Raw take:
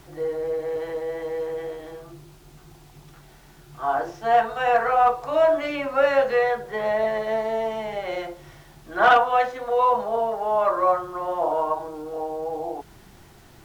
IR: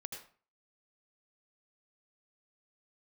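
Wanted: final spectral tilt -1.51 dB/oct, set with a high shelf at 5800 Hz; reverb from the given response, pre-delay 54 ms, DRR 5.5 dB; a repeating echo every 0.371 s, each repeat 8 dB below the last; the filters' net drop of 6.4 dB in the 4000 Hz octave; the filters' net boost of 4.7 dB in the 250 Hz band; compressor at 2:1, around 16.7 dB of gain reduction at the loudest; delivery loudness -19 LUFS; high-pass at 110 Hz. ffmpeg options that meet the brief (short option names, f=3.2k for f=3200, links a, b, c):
-filter_complex "[0:a]highpass=110,equalizer=f=250:t=o:g=6.5,equalizer=f=4k:t=o:g=-8.5,highshelf=f=5.8k:g=-4.5,acompressor=threshold=-45dB:ratio=2,aecho=1:1:371|742|1113|1484|1855:0.398|0.159|0.0637|0.0255|0.0102,asplit=2[a][b];[1:a]atrim=start_sample=2205,adelay=54[c];[b][c]afir=irnorm=-1:irlink=0,volume=-3dB[d];[a][d]amix=inputs=2:normalize=0,volume=16.5dB"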